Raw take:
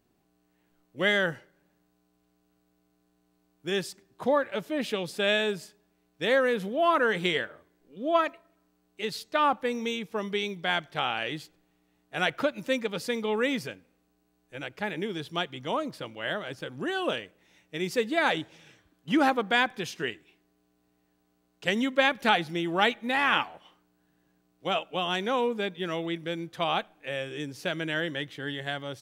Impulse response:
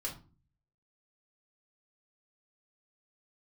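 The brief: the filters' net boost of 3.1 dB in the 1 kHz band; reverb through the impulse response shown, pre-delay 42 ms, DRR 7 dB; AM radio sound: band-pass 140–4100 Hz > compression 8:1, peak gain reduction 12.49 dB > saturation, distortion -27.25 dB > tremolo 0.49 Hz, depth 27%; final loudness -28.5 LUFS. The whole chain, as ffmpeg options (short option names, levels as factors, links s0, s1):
-filter_complex "[0:a]equalizer=f=1000:t=o:g=4,asplit=2[s0][s1];[1:a]atrim=start_sample=2205,adelay=42[s2];[s1][s2]afir=irnorm=-1:irlink=0,volume=0.422[s3];[s0][s3]amix=inputs=2:normalize=0,highpass=140,lowpass=4100,acompressor=threshold=0.0447:ratio=8,asoftclip=threshold=0.15,tremolo=f=0.49:d=0.27,volume=2.11"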